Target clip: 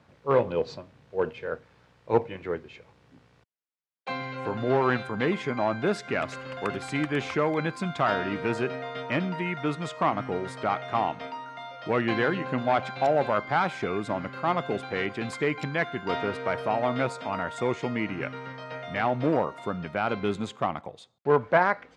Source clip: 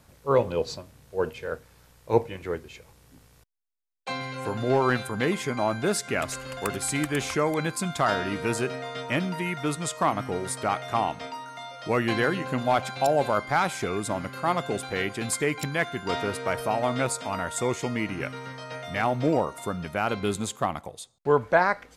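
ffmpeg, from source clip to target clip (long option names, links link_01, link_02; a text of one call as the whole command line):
ffmpeg -i in.wav -af "aeval=exprs='clip(val(0),-1,0.141)':channel_layout=same,highpass=110,lowpass=3200" out.wav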